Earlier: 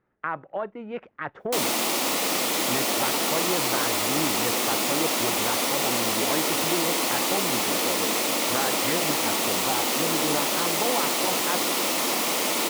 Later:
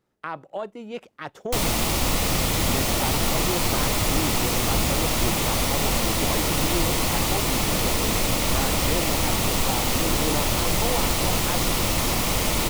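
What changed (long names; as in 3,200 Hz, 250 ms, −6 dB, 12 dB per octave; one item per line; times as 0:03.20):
speech: remove low-pass with resonance 1,800 Hz, resonance Q 1.7
background: remove high-pass filter 250 Hz 24 dB per octave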